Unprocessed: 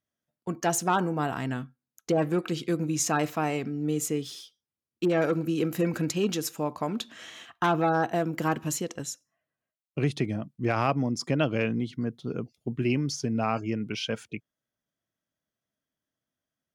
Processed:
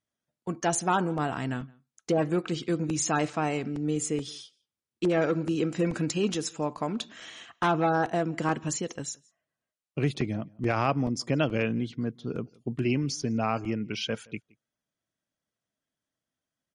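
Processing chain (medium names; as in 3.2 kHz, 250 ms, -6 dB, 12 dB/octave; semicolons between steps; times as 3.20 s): echo from a far wall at 29 m, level -26 dB; crackling interface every 0.43 s, samples 128, zero, from 0.32 s; MP3 40 kbps 48 kHz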